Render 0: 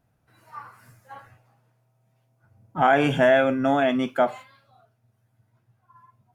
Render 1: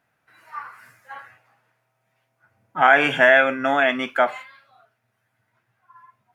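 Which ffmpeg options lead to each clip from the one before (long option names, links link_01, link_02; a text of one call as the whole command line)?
ffmpeg -i in.wav -af "highpass=frequency=380:poles=1,equalizer=frequency=1900:width=0.86:gain=11" out.wav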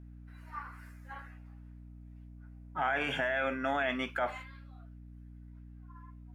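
ffmpeg -i in.wav -af "alimiter=limit=-14dB:level=0:latency=1:release=27,aeval=exprs='val(0)+0.01*(sin(2*PI*60*n/s)+sin(2*PI*2*60*n/s)/2+sin(2*PI*3*60*n/s)/3+sin(2*PI*4*60*n/s)/4+sin(2*PI*5*60*n/s)/5)':channel_layout=same,volume=-8.5dB" out.wav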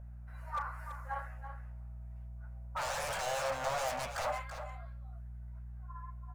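ffmpeg -i in.wav -af "aeval=exprs='0.0178*(abs(mod(val(0)/0.0178+3,4)-2)-1)':channel_layout=same,firequalizer=gain_entry='entry(100,0);entry(330,-24);entry(540,8);entry(1900,-3);entry(3200,-8);entry(7200,-1)':delay=0.05:min_phase=1,aecho=1:1:332:0.316,volume=3.5dB" out.wav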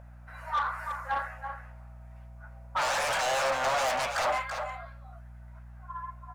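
ffmpeg -i in.wav -filter_complex "[0:a]asplit=2[link_01][link_02];[link_02]highpass=frequency=720:poles=1,volume=15dB,asoftclip=type=tanh:threshold=-22dB[link_03];[link_01][link_03]amix=inputs=2:normalize=0,lowpass=frequency=5000:poles=1,volume=-6dB,volume=3dB" out.wav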